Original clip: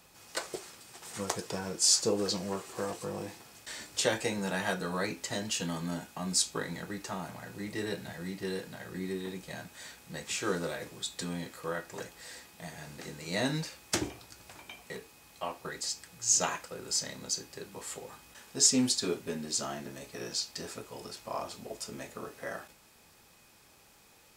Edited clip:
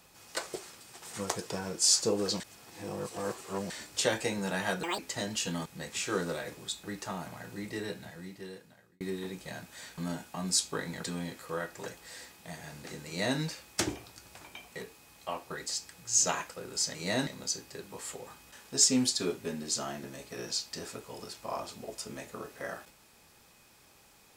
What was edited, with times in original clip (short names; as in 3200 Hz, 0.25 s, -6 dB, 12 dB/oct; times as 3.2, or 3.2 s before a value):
2.4–3.7 reverse
4.83–5.13 speed 192%
5.8–6.86 swap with 10–11.18
7.55–9.03 fade out
13.21–13.53 copy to 17.09